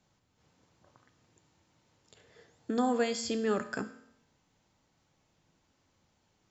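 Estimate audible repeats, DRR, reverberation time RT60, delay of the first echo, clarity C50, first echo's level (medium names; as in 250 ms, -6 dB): no echo, 9.0 dB, 0.75 s, no echo, 13.0 dB, no echo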